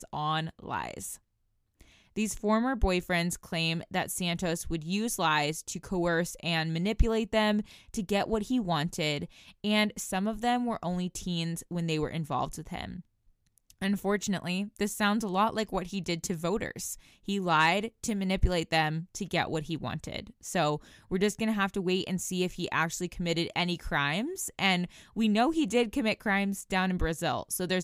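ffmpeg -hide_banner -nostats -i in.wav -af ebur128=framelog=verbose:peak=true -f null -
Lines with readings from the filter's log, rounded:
Integrated loudness:
  I:         -30.2 LUFS
  Threshold: -40.4 LUFS
Loudness range:
  LRA:         3.7 LU
  Threshold: -50.4 LUFS
  LRA low:   -32.4 LUFS
  LRA high:  -28.7 LUFS
True peak:
  Peak:      -12.6 dBFS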